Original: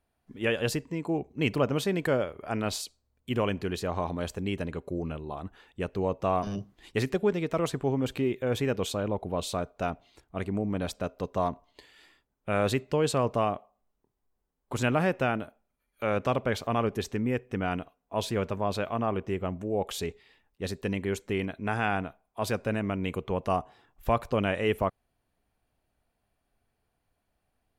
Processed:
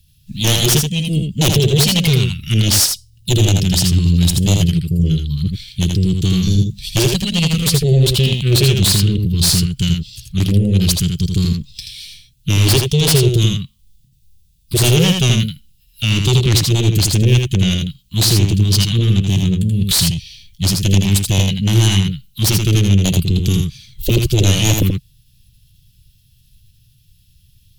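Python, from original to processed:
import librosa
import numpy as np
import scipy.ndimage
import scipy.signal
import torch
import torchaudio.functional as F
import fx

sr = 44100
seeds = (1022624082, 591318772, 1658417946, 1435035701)

p1 = scipy.signal.sosfilt(scipy.signal.cheby1(3, 1.0, [140.0, 2800.0], 'bandstop', fs=sr, output='sos'), x)
p2 = fx.fold_sine(p1, sr, drive_db=16, ceiling_db=-17.0)
p3 = fx.formant_shift(p2, sr, semitones=3)
p4 = p3 + fx.echo_single(p3, sr, ms=81, db=-4.5, dry=0)
y = p4 * librosa.db_to_amplitude(7.0)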